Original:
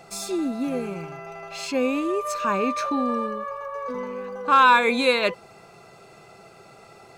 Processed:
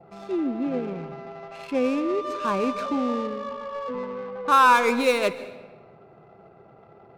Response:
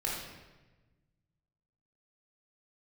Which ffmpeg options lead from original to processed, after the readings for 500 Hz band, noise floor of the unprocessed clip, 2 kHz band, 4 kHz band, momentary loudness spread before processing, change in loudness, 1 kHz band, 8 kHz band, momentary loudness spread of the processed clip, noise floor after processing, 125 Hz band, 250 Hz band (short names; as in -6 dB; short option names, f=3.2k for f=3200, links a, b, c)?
0.0 dB, -50 dBFS, -2.5 dB, -4.5 dB, 17 LU, -1.0 dB, -1.0 dB, -5.0 dB, 20 LU, -52 dBFS, n/a, 0.0 dB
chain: -filter_complex "[0:a]highpass=50,adynamicequalizer=threshold=0.01:dfrequency=1800:dqfactor=2.1:tfrequency=1800:tqfactor=2.1:attack=5:release=100:ratio=0.375:range=2.5:mode=cutabove:tftype=bell,lowpass=f=3.1k:p=1,adynamicsmooth=sensitivity=5:basefreq=930,asplit=2[a][b];[1:a]atrim=start_sample=2205,adelay=136[c];[b][c]afir=irnorm=-1:irlink=0,volume=-19.5dB[d];[a][d]amix=inputs=2:normalize=0"